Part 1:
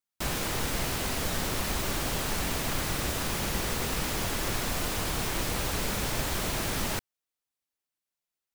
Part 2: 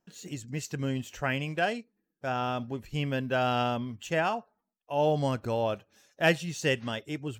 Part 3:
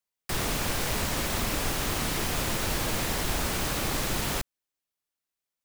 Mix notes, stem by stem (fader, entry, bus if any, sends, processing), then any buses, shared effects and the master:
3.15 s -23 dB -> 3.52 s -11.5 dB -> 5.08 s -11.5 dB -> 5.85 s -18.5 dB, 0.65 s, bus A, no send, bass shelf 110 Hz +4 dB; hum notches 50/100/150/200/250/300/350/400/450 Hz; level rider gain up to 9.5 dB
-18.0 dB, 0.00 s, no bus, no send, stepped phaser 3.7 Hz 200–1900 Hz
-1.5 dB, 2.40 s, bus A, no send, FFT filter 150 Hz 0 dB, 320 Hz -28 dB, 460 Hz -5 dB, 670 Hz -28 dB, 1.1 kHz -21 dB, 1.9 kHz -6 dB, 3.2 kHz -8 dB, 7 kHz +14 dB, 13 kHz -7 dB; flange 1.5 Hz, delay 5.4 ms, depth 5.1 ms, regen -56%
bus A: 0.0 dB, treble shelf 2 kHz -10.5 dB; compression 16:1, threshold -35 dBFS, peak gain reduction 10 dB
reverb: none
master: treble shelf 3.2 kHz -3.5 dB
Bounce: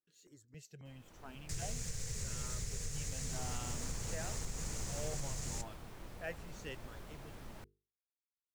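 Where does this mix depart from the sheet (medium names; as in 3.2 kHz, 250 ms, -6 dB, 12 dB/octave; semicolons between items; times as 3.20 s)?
stem 1 -23.0 dB -> -33.0 dB; stem 3: entry 2.40 s -> 1.20 s; master: missing treble shelf 3.2 kHz -3.5 dB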